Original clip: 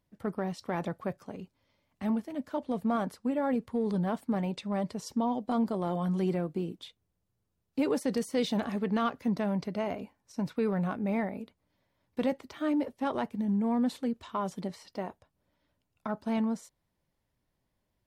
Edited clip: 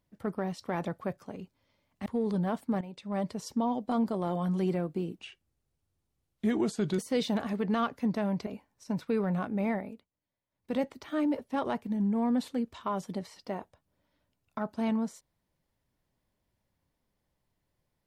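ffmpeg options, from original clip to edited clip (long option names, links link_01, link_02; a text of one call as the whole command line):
ffmpeg -i in.wav -filter_complex "[0:a]asplit=8[link_01][link_02][link_03][link_04][link_05][link_06][link_07][link_08];[link_01]atrim=end=2.062[link_09];[link_02]atrim=start=3.658:end=4.41,asetpts=PTS-STARTPTS,afade=type=out:start_time=0.748:duration=0.004:curve=hsin:silence=0.251189[link_10];[link_03]atrim=start=4.41:end=6.804,asetpts=PTS-STARTPTS,afade=type=in:duration=0.37:curve=qua:silence=0.251189[link_11];[link_04]atrim=start=6.8:end=8.21,asetpts=PTS-STARTPTS,asetrate=34839,aresample=44100,atrim=end_sample=78710,asetpts=PTS-STARTPTS[link_12];[link_05]atrim=start=8.206:end=9.692[link_13];[link_06]atrim=start=9.948:end=11.58,asetpts=PTS-STARTPTS,afade=type=out:start_time=1.312:duration=0.32:silence=0.16788[link_14];[link_07]atrim=start=11.58:end=11.99,asetpts=PTS-STARTPTS,volume=-15.5dB[link_15];[link_08]atrim=start=11.99,asetpts=PTS-STARTPTS,afade=type=in:duration=0.32:silence=0.16788[link_16];[link_10][link_11]concat=n=2:v=0:a=1[link_17];[link_09][link_17]acrossfade=duration=0.004:curve1=hsin:curve2=hsin[link_18];[link_18][link_12]acrossfade=duration=0.004:curve1=hsin:curve2=hsin[link_19];[link_19][link_13]acrossfade=duration=0.004:curve1=hsin:curve2=hsin[link_20];[link_14][link_15][link_16]concat=n=3:v=0:a=1[link_21];[link_20][link_21]acrossfade=duration=0.004:curve1=hsin:curve2=hsin" out.wav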